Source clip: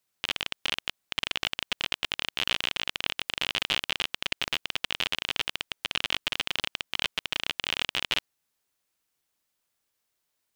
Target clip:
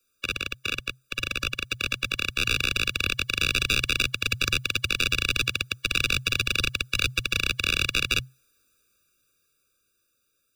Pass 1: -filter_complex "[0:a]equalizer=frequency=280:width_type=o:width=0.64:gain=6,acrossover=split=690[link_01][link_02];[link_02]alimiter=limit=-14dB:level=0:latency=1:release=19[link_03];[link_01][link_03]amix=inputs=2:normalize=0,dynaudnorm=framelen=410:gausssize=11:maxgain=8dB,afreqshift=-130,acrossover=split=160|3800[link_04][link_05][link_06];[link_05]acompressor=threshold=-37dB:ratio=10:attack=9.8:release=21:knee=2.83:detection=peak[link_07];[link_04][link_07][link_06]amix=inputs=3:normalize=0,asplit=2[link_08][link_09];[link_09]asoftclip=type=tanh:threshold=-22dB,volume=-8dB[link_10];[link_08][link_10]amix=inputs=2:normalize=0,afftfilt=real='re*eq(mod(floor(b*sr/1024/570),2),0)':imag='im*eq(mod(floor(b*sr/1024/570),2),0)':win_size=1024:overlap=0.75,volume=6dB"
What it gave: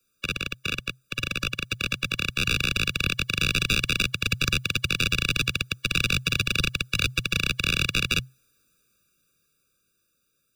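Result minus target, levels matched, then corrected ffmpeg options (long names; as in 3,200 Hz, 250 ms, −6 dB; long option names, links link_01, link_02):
250 Hz band +5.0 dB
-filter_complex "[0:a]equalizer=frequency=280:width_type=o:width=0.64:gain=-5,acrossover=split=690[link_01][link_02];[link_02]alimiter=limit=-14dB:level=0:latency=1:release=19[link_03];[link_01][link_03]amix=inputs=2:normalize=0,dynaudnorm=framelen=410:gausssize=11:maxgain=8dB,afreqshift=-130,acrossover=split=160|3800[link_04][link_05][link_06];[link_05]acompressor=threshold=-37dB:ratio=10:attack=9.8:release=21:knee=2.83:detection=peak[link_07];[link_04][link_07][link_06]amix=inputs=3:normalize=0,asplit=2[link_08][link_09];[link_09]asoftclip=type=tanh:threshold=-22dB,volume=-8dB[link_10];[link_08][link_10]amix=inputs=2:normalize=0,afftfilt=real='re*eq(mod(floor(b*sr/1024/570),2),0)':imag='im*eq(mod(floor(b*sr/1024/570),2),0)':win_size=1024:overlap=0.75,volume=6dB"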